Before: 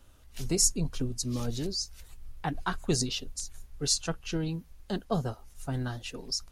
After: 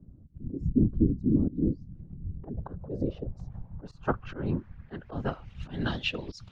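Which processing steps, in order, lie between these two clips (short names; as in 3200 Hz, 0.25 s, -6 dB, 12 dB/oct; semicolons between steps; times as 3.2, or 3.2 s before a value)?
low-pass opened by the level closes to 2900 Hz, open at -28.5 dBFS; auto swell 0.2 s; whisperiser; low-pass sweep 280 Hz -> 3300 Hz, 1.86–5.81; gain +4.5 dB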